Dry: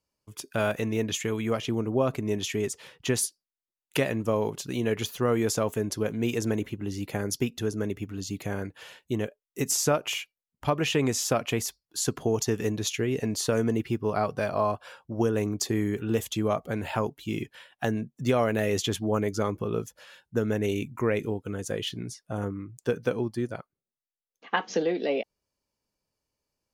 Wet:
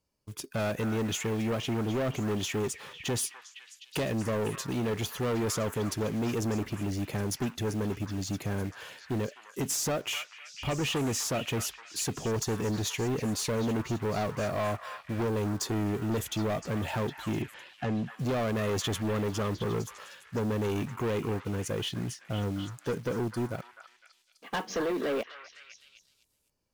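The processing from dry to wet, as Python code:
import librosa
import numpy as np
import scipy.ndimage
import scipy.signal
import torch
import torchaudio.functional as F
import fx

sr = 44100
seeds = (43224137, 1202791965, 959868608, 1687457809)

y = fx.low_shelf(x, sr, hz=430.0, db=5.5)
y = fx.quant_float(y, sr, bits=2)
y = 10.0 ** (-26.5 / 20.0) * np.tanh(y / 10.0 ** (-26.5 / 20.0))
y = fx.air_absorb(y, sr, metres=110.0, at=(17.42, 18.18))
y = fx.echo_stepped(y, sr, ms=254, hz=1400.0, octaves=0.7, feedback_pct=70, wet_db=-5)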